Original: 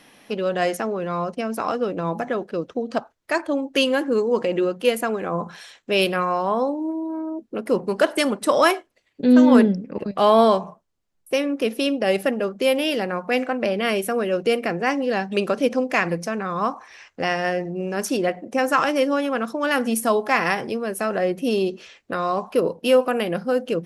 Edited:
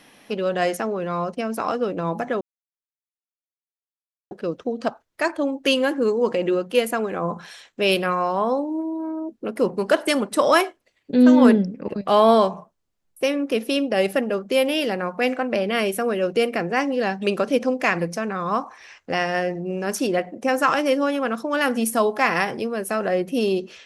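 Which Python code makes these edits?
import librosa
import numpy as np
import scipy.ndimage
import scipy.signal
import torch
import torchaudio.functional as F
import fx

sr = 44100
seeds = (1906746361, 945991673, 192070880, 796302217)

y = fx.edit(x, sr, fx.insert_silence(at_s=2.41, length_s=1.9), tone=tone)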